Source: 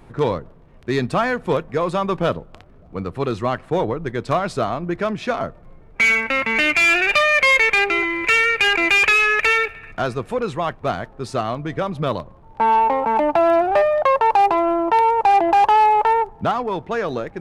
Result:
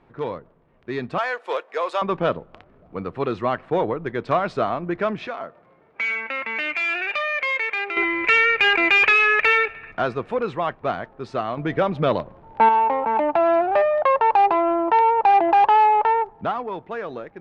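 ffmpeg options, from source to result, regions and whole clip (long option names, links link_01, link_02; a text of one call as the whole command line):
ffmpeg -i in.wav -filter_complex "[0:a]asettb=1/sr,asplit=3[link_01][link_02][link_03];[link_01]atrim=end=1.184[link_04];[link_02]atrim=start=1.18:end=2.02,asetpts=PTS-STARTPTS,afade=type=in:duration=0.004:curve=qsin,afade=type=out:start_time=0.836:duration=0.004:curve=qsin,highpass=frequency=460:width=0.5412,highpass=frequency=460:width=1.3066,aemphasis=mode=production:type=75fm[link_05];[link_03]atrim=start=2.016[link_06];[link_04][link_05]acrossfade=duration=0.004:curve1=hsin:curve2=qsin[link_07];[link_07][link_06]acrossfade=duration=0.004:curve1=qsin:curve2=hsin,asettb=1/sr,asplit=3[link_08][link_09][link_10];[link_08]atrim=end=5.274[link_11];[link_09]atrim=start=5.27:end=7.97,asetpts=PTS-STARTPTS,afade=type=in:duration=0.004:curve=qsin,afade=type=out:start_time=2.696:duration=0.004:curve=qsin,highpass=100,lowshelf=frequency=250:gain=-10.5,acompressor=threshold=-37dB:ratio=1.5:attack=3.2:release=140:knee=1:detection=peak[link_12];[link_10]atrim=start=7.966[link_13];[link_11][link_12]acrossfade=duration=0.004:curve1=hsin:curve2=qsin[link_14];[link_14][link_13]acrossfade=duration=0.004:curve1=qsin:curve2=hsin,asettb=1/sr,asplit=3[link_15][link_16][link_17];[link_15]atrim=end=11.574[link_18];[link_16]atrim=start=11.57:end=12.69,asetpts=PTS-STARTPTS,afade=type=in:duration=0.004:curve=qsin,afade=type=out:start_time=1.116:duration=0.004:curve=qsin,equalizer=frequency=1100:width=5.6:gain=-5.5,acontrast=74[link_19];[link_17]atrim=start=12.686[link_20];[link_18][link_19]acrossfade=duration=0.004:curve1=hsin:curve2=qsin[link_21];[link_21][link_20]acrossfade=duration=0.004:curve1=qsin:curve2=hsin,lowpass=3100,lowshelf=frequency=130:gain=-11.5,dynaudnorm=framelen=250:gausssize=11:maxgain=11.5dB,volume=-7dB" out.wav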